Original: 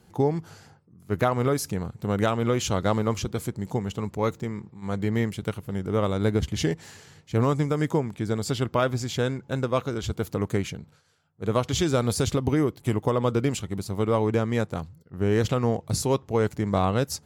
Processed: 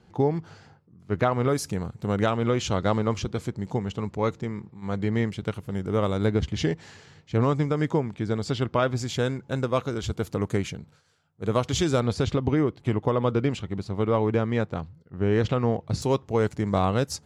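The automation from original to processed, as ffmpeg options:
-af "asetnsamples=n=441:p=0,asendcmd='1.49 lowpass f 9700;2.16 lowpass f 5800;5.54 lowpass f 9600;6.26 lowpass f 5200;8.96 lowpass f 10000;12 lowpass f 3900;16.02 lowpass f 9100',lowpass=4600"

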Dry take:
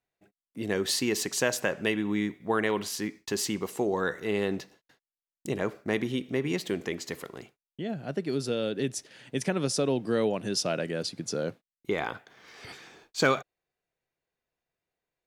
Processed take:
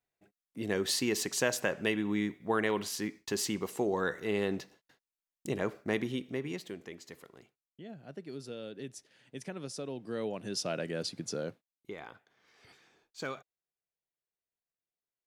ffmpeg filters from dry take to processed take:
-af "volume=2.24,afade=t=out:st=5.91:d=0.86:silence=0.316228,afade=t=in:st=9.94:d=1.19:silence=0.316228,afade=t=out:st=11.13:d=0.82:silence=0.251189"

